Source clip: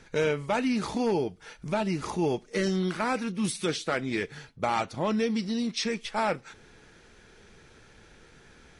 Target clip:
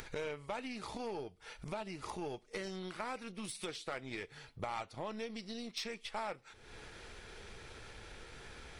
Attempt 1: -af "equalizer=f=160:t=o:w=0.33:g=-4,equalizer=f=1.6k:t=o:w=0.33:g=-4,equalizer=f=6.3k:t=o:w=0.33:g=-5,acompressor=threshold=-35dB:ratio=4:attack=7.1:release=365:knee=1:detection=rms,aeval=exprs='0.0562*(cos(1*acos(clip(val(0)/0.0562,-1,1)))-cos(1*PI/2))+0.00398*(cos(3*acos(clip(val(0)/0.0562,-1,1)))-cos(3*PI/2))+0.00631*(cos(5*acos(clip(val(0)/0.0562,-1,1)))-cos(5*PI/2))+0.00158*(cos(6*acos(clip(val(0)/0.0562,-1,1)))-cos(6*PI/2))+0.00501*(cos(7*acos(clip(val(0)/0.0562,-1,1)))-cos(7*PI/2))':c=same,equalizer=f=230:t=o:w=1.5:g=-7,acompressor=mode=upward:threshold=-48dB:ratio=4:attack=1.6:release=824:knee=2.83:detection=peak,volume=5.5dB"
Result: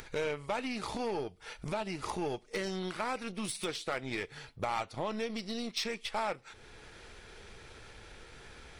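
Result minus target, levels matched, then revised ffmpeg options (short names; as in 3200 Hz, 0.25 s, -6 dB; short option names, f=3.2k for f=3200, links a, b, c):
compressor: peak gain reduction -5 dB
-af "equalizer=f=160:t=o:w=0.33:g=-4,equalizer=f=1.6k:t=o:w=0.33:g=-4,equalizer=f=6.3k:t=o:w=0.33:g=-5,acompressor=threshold=-42dB:ratio=4:attack=7.1:release=365:knee=1:detection=rms,aeval=exprs='0.0562*(cos(1*acos(clip(val(0)/0.0562,-1,1)))-cos(1*PI/2))+0.00398*(cos(3*acos(clip(val(0)/0.0562,-1,1)))-cos(3*PI/2))+0.00631*(cos(5*acos(clip(val(0)/0.0562,-1,1)))-cos(5*PI/2))+0.00158*(cos(6*acos(clip(val(0)/0.0562,-1,1)))-cos(6*PI/2))+0.00501*(cos(7*acos(clip(val(0)/0.0562,-1,1)))-cos(7*PI/2))':c=same,equalizer=f=230:t=o:w=1.5:g=-7,acompressor=mode=upward:threshold=-48dB:ratio=4:attack=1.6:release=824:knee=2.83:detection=peak,volume=5.5dB"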